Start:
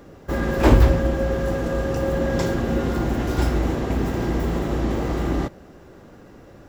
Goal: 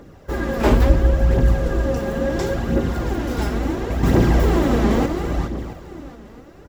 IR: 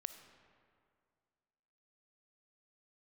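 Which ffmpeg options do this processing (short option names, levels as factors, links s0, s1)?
-filter_complex "[0:a]asettb=1/sr,asplit=3[s0][s1][s2];[s0]atrim=end=0.894[s3];[s1]atrim=start=0.89:end=1.99,asetpts=PTS-STARTPTS,afade=t=in:d=0.004:c=qsin,afade=t=out:st=1.096:d=0.004:c=qsin,lowshelf=f=110:g=9[s4];[s2]atrim=start=1.986[s5];[s3][s4]acrossfade=d=0.004:c1=hsin:c2=qsin[s6];[s6][s5]acrossfade=d=0.004:c1=qsin:c2=hsin,asettb=1/sr,asplit=3[s7][s8][s9];[s7]atrim=end=4.034[s10];[s8]atrim=start=4.03:end=5.06,asetpts=PTS-STARTPTS,afade=t=in:d=0.004:c=qsin,afade=t=out:st=1.026:d=0.004:c=qsin,acontrast=84[s11];[s9]atrim=start=5.056[s12];[s10][s11]acrossfade=d=0.004:c1=hsin:c2=qsin[s13];[s13][s12]acrossfade=d=0.004:c1=qsin:c2=hsin,aecho=1:1:673|1346|2019:0.188|0.0527|0.0148,aphaser=in_gain=1:out_gain=1:delay=5:decay=0.46:speed=0.72:type=triangular,volume=0.891"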